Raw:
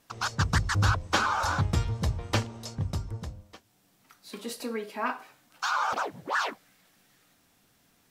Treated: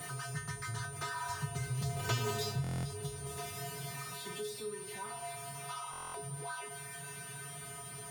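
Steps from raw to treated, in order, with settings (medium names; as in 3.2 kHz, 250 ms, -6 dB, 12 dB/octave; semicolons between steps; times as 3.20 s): jump at every zero crossing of -27.5 dBFS; Doppler pass-by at 2.26 s, 36 m/s, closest 3.7 m; high-pass 55 Hz; in parallel at -0.5 dB: compression, threshold -54 dBFS, peak gain reduction 26 dB; on the sum: feedback comb 140 Hz, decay 0.29 s, harmonics odd, mix 100%; whistle 9.1 kHz -68 dBFS; on a send: repeats whose band climbs or falls 110 ms, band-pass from 260 Hz, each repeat 1.4 oct, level -11 dB; on the sum: buffer glitch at 2.62/5.91 s, samples 1024, times 9; three bands compressed up and down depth 70%; trim +18 dB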